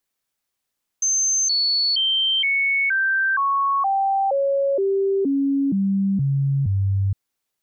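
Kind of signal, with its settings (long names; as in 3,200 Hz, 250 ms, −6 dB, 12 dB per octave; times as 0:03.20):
stepped sweep 6,260 Hz down, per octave 2, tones 13, 0.47 s, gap 0.00 s −17 dBFS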